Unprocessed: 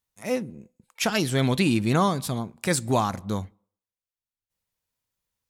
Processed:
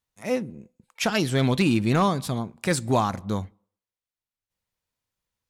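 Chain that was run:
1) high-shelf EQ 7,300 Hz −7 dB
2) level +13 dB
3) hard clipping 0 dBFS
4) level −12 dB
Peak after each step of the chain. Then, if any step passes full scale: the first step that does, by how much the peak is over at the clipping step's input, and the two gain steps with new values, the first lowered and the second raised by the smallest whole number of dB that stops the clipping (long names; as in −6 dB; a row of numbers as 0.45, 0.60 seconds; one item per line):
−9.0, +4.0, 0.0, −12.0 dBFS
step 2, 4.0 dB
step 2 +9 dB, step 4 −8 dB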